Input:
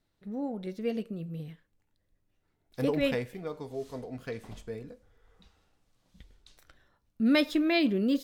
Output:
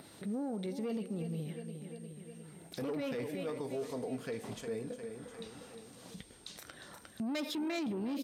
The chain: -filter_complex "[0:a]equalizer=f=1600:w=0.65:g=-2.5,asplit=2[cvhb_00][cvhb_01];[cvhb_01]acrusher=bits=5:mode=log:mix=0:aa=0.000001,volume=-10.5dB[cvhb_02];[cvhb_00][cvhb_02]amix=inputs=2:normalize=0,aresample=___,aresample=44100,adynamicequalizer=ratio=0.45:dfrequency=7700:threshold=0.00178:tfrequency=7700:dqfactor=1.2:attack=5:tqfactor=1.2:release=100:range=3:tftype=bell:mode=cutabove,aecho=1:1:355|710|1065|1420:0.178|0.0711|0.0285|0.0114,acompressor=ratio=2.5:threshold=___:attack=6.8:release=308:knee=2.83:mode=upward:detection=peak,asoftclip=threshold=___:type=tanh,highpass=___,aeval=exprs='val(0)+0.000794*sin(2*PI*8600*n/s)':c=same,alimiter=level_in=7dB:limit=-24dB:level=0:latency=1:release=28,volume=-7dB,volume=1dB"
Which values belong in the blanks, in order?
32000, -33dB, -24dB, 160